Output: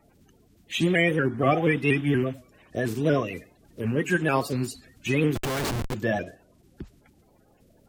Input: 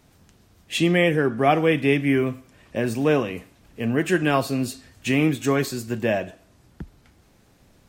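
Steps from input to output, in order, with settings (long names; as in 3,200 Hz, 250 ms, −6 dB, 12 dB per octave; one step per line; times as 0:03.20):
spectral magnitudes quantised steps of 30 dB
0:05.35–0:05.94: comparator with hysteresis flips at −29.5 dBFS
pitch modulation by a square or saw wave saw up 4.2 Hz, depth 100 cents
level −2.5 dB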